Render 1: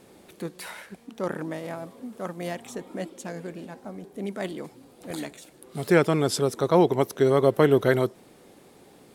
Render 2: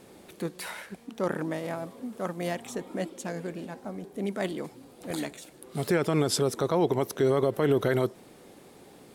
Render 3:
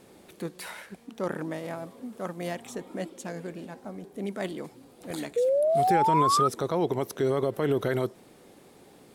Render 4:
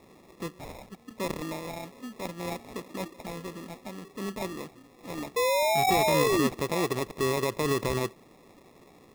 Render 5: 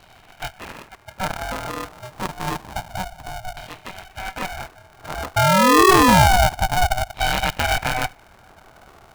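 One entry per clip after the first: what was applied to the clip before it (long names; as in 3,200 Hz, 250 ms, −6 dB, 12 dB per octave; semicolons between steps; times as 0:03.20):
brickwall limiter −15.5 dBFS, peak gain reduction 10 dB; level +1 dB
sound drawn into the spectrogram rise, 0:05.36–0:06.48, 470–1,300 Hz −21 dBFS; level −2 dB
decimation without filtering 29×; level −1.5 dB
auto-filter low-pass saw down 0.28 Hz 310–3,400 Hz; linear-phase brick-wall high-pass 240 Hz; ring modulator with a square carrier 370 Hz; level +6 dB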